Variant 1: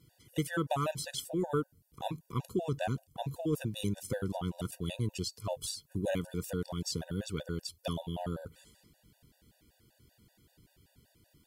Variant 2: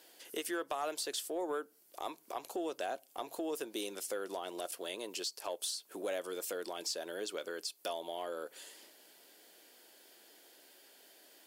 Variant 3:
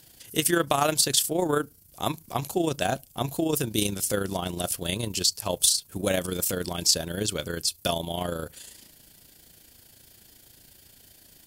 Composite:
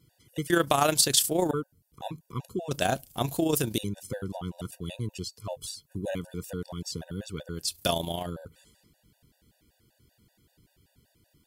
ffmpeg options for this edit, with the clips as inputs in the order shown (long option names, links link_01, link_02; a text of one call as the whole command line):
ffmpeg -i take0.wav -i take1.wav -i take2.wav -filter_complex "[2:a]asplit=3[link_01][link_02][link_03];[0:a]asplit=4[link_04][link_05][link_06][link_07];[link_04]atrim=end=0.502[link_08];[link_01]atrim=start=0.498:end=1.512[link_09];[link_05]atrim=start=1.508:end=2.712[link_10];[link_02]atrim=start=2.708:end=3.782[link_11];[link_06]atrim=start=3.778:end=7.78[link_12];[link_03]atrim=start=7.54:end=8.33[link_13];[link_07]atrim=start=8.09[link_14];[link_08][link_09]acrossfade=duration=0.004:curve1=hsin:curve2=hsin[link_15];[link_15][link_10]acrossfade=duration=0.004:curve1=hsin:curve2=hsin[link_16];[link_16][link_11]acrossfade=duration=0.004:curve1=hsin:curve2=hsin[link_17];[link_17][link_12]acrossfade=duration=0.004:curve1=hsin:curve2=hsin[link_18];[link_18][link_13]acrossfade=duration=0.24:curve1=tri:curve2=tri[link_19];[link_19][link_14]acrossfade=duration=0.24:curve1=tri:curve2=tri" out.wav